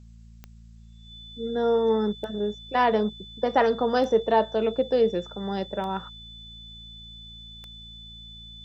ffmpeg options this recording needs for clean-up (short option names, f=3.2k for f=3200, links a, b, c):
-af "adeclick=t=4,bandreject=f=56.3:t=h:w=4,bandreject=f=112.6:t=h:w=4,bandreject=f=168.9:t=h:w=4,bandreject=f=225.2:t=h:w=4,bandreject=f=3.5k:w=30,agate=range=-21dB:threshold=-40dB"